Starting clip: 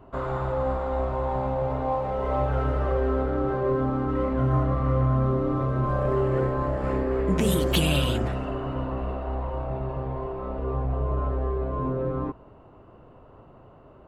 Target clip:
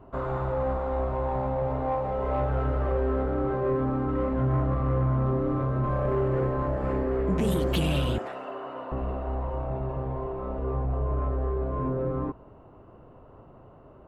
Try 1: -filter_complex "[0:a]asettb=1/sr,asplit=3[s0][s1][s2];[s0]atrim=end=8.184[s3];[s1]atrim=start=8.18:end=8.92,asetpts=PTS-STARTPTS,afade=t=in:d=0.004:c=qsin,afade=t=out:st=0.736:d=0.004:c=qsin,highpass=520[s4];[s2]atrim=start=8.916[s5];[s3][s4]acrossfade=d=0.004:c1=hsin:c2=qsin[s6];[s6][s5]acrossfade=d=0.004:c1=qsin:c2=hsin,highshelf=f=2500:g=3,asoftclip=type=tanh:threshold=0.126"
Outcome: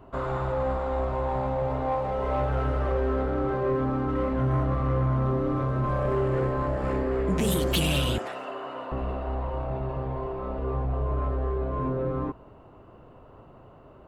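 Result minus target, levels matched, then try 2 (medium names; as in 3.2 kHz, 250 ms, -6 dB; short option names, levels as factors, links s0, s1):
4 kHz band +6.0 dB
-filter_complex "[0:a]asettb=1/sr,asplit=3[s0][s1][s2];[s0]atrim=end=8.184[s3];[s1]atrim=start=8.18:end=8.92,asetpts=PTS-STARTPTS,afade=t=in:d=0.004:c=qsin,afade=t=out:st=0.736:d=0.004:c=qsin,highpass=520[s4];[s2]atrim=start=8.916[s5];[s3][s4]acrossfade=d=0.004:c1=hsin:c2=qsin[s6];[s6][s5]acrossfade=d=0.004:c1=qsin:c2=hsin,highshelf=f=2500:g=-8,asoftclip=type=tanh:threshold=0.126"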